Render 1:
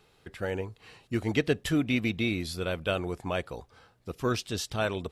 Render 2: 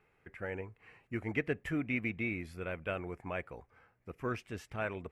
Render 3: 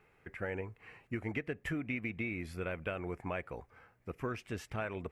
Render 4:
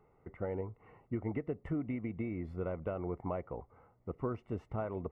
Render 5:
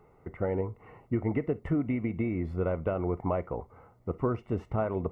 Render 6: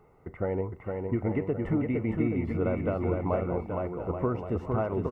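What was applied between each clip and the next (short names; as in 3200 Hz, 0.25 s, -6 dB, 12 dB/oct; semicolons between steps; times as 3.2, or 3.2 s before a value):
resonant high shelf 2900 Hz -9.5 dB, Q 3; gain -8.5 dB
compressor 10:1, threshold -37 dBFS, peak gain reduction 11 dB; gain +4 dB
polynomial smoothing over 65 samples; gain +2 dB
reverb, pre-delay 3 ms, DRR 17 dB; gain +7.5 dB
bouncing-ball echo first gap 0.46 s, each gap 0.8×, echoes 5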